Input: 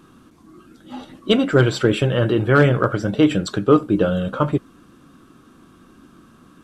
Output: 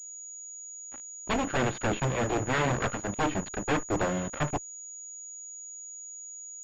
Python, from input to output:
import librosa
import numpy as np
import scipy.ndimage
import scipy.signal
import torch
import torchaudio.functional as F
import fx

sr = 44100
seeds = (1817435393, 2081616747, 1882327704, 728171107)

y = fx.cheby_harmonics(x, sr, harmonics=(3, 4, 8), levels_db=(-7, -23, -44), full_scale_db=-3.5)
y = fx.fuzz(y, sr, gain_db=28.0, gate_db=-37.0)
y = fx.pwm(y, sr, carrier_hz=6800.0)
y = y * librosa.db_to_amplitude(-8.5)